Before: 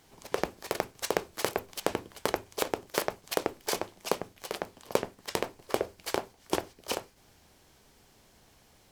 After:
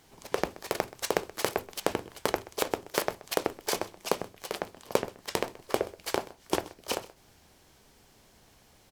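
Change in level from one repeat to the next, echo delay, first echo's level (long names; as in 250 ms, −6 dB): repeats not evenly spaced, 128 ms, −19.5 dB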